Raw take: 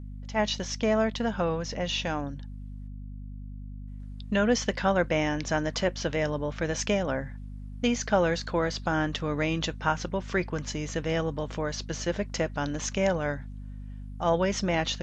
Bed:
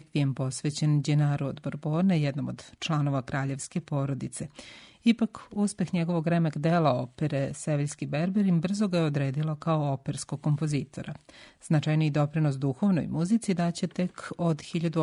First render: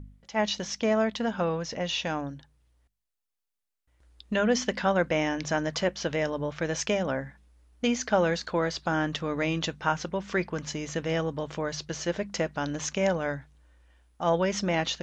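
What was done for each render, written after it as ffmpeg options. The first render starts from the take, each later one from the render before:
-af "bandreject=f=50:t=h:w=4,bandreject=f=100:t=h:w=4,bandreject=f=150:t=h:w=4,bandreject=f=200:t=h:w=4,bandreject=f=250:t=h:w=4"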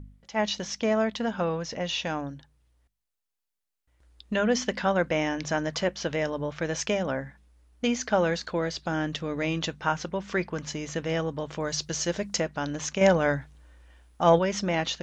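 -filter_complex "[0:a]asettb=1/sr,asplit=3[a][b][c];[a]atrim=end=8.514[d];[b]atrim=start=8.51:end=9.44,asetpts=PTS-STARTPTS,afade=t=in:d=0.004:c=qsin,afade=t=out:st=0.926:d=0.004:c=qsin,equalizer=f=1.1k:t=o:w=1.2:g=-5[e];[c]atrim=start=9.436[f];[d][e]acrossfade=d=0.004:c1=hsin:c2=qsin[g];[g][f]acrossfade=d=0.004:c1=qsin:c2=hsin,asettb=1/sr,asplit=3[h][i][j];[h]atrim=end=11.604[k];[i]atrim=start=11.6:end=12.4,asetpts=PTS-STARTPTS,afade=t=in:d=0.004:c=qsin,afade=t=out:st=0.796:d=0.004:c=qsin,bass=f=250:g=2,treble=f=4k:g=9[l];[j]atrim=start=12.396[m];[k][l]acrossfade=d=0.004:c1=hsin:c2=qsin[n];[n][m]acrossfade=d=0.004:c1=qsin:c2=hsin,asettb=1/sr,asplit=3[o][p][q];[o]atrim=end=13.014[r];[p]atrim=start=13.01:end=14.39,asetpts=PTS-STARTPTS,afade=t=in:d=0.004:c=qsin,afade=t=out:st=1.376:d=0.004:c=qsin,acontrast=50[s];[q]atrim=start=14.386[t];[r][s]acrossfade=d=0.004:c1=hsin:c2=qsin[u];[u][t]acrossfade=d=0.004:c1=qsin:c2=hsin"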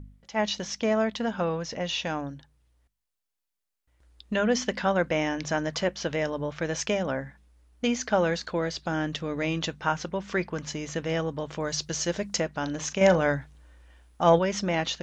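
-filter_complex "[0:a]asettb=1/sr,asplit=3[a][b][c];[a]atrim=end=12.594[d];[b]atrim=start=12.59:end=13.22,asetpts=PTS-STARTPTS,afade=t=in:d=0.004:c=qsin,afade=t=out:st=0.626:d=0.004:c=qsin,asplit=2[e][f];[f]adelay=38,volume=-13dB[g];[e][g]amix=inputs=2:normalize=0,atrim=end_sample=27783[h];[c]atrim=start=13.216[i];[d][h]acrossfade=d=0.004:c1=hsin:c2=qsin[j];[j][i]acrossfade=d=0.004:c1=qsin:c2=hsin"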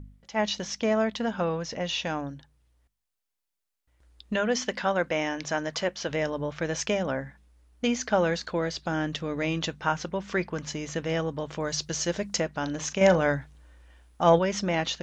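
-filter_complex "[0:a]asettb=1/sr,asplit=3[a][b][c];[a]atrim=end=4.364[d];[b]atrim=start=4.36:end=6.09,asetpts=PTS-STARTPTS,afade=t=in:d=0.004:c=qsin,afade=t=out:st=1.726:d=0.004:c=qsin,lowshelf=f=230:g=-8[e];[c]atrim=start=6.086[f];[d][e]acrossfade=d=0.004:c1=hsin:c2=qsin[g];[g][f]acrossfade=d=0.004:c1=qsin:c2=hsin"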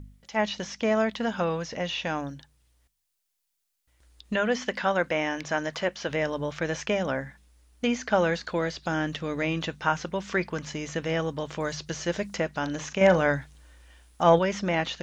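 -filter_complex "[0:a]acrossover=split=2600[a][b];[b]acompressor=threshold=-49dB:ratio=4:attack=1:release=60[c];[a][c]amix=inputs=2:normalize=0,highshelf=f=2.4k:g=9.5"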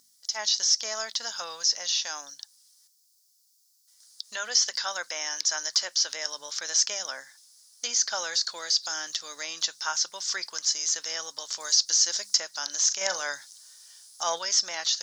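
-af "highpass=1.3k,highshelf=f=3.6k:t=q:w=3:g=12.5"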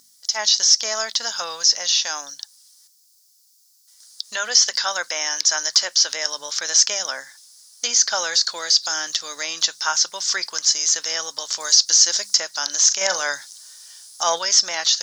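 -af "volume=8dB,alimiter=limit=-2dB:level=0:latency=1"

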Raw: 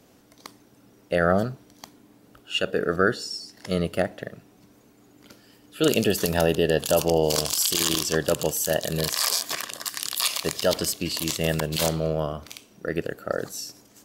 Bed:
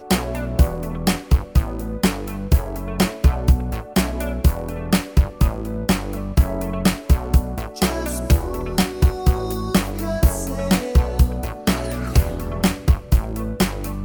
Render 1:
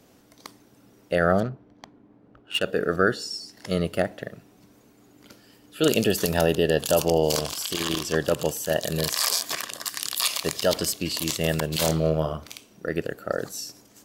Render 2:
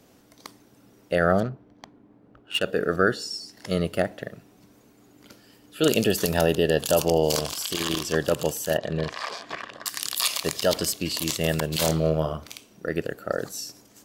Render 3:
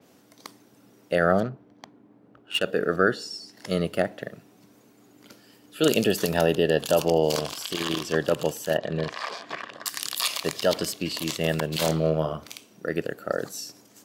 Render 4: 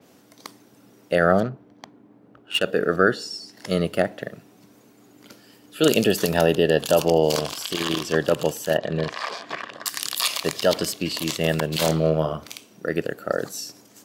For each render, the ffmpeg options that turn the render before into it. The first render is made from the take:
-filter_complex "[0:a]asettb=1/sr,asplit=3[a][b][c];[a]atrim=end=1.404[d];[b]atrim=start=1.4:end=2.63,asetpts=PTS-STARTPTS,afade=t=in:d=0.004:c=qsin,afade=t=out:st=1.226:d=0.004:c=qsin,adynamicsmooth=sensitivity=4.5:basefreq=1.5k[e];[c]atrim=start=2.626[f];[d][e]acrossfade=d=0.004:c1=hsin:c2=qsin[g];[g][f]acrossfade=d=0.004:c1=qsin:c2=hsin,asettb=1/sr,asplit=3[h][i][j];[h]atrim=end=7.384[k];[i]atrim=start=7.38:end=8.81,asetpts=PTS-STARTPTS,afade=t=in:d=0.004:c=qsin,afade=t=out:st=1.426:d=0.004:c=qsin,acrossover=split=3400[l][m];[m]acompressor=threshold=-29dB:ratio=4:attack=1:release=60[n];[l][n]amix=inputs=2:normalize=0[o];[j]atrim=start=8.806[p];[k][o]acrossfade=d=0.004:c1=hsin:c2=qsin[q];[q][p]acrossfade=d=0.004:c1=qsin:c2=hsin,asettb=1/sr,asplit=3[r][s][t];[r]atrim=end=11.864[u];[s]atrim=start=11.86:end=12.37,asetpts=PTS-STARTPTS,afade=t=in:d=0.004:c=qsin,afade=t=out:st=0.506:d=0.004:c=qsin,asplit=2[v][w];[w]adelay=25,volume=-6dB[x];[v][x]amix=inputs=2:normalize=0,atrim=end_sample=22491[y];[t]atrim=start=12.366[z];[u][y]acrossfade=d=0.004:c1=hsin:c2=qsin[aa];[aa][z]acrossfade=d=0.004:c1=qsin:c2=hsin"
-filter_complex "[0:a]asettb=1/sr,asplit=3[a][b][c];[a]atrim=end=8.774[d];[b]atrim=start=8.77:end=9.86,asetpts=PTS-STARTPTS,afade=t=in:d=0.004:c=qsin,afade=t=out:st=1.086:d=0.004:c=qsin,lowpass=2.2k[e];[c]atrim=start=9.856[f];[d][e]acrossfade=d=0.004:c1=hsin:c2=qsin[g];[g][f]acrossfade=d=0.004:c1=qsin:c2=hsin"
-af "highpass=120,adynamicequalizer=threshold=0.00708:dfrequency=4800:dqfactor=0.7:tfrequency=4800:tqfactor=0.7:attack=5:release=100:ratio=0.375:range=3.5:mode=cutabove:tftype=highshelf"
-af "volume=3dB"

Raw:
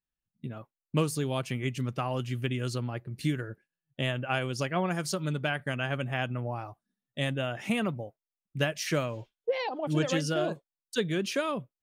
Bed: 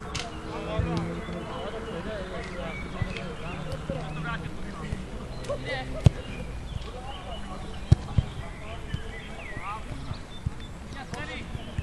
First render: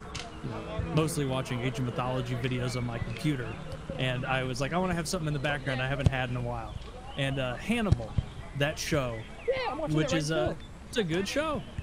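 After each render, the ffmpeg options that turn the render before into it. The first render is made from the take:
-filter_complex "[1:a]volume=-5.5dB[a];[0:a][a]amix=inputs=2:normalize=0"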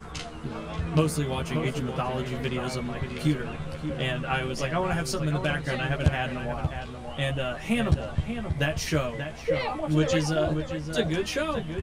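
-filter_complex "[0:a]asplit=2[a][b];[b]adelay=13,volume=-2.5dB[c];[a][c]amix=inputs=2:normalize=0,asplit=2[d][e];[e]adelay=583.1,volume=-7dB,highshelf=f=4k:g=-13.1[f];[d][f]amix=inputs=2:normalize=0"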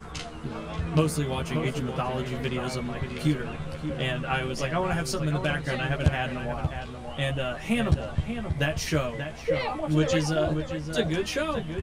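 -af anull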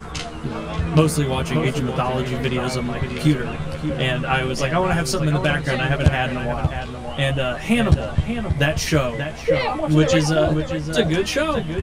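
-af "volume=7.5dB,alimiter=limit=-3dB:level=0:latency=1"

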